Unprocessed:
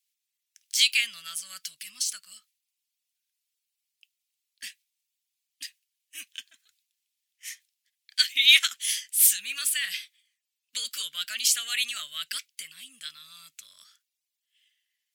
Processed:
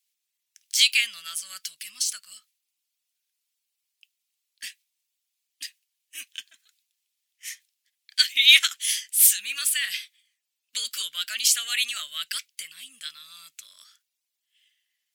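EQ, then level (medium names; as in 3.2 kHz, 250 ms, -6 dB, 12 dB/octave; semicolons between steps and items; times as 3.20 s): high-pass 350 Hz 6 dB/octave; +2.5 dB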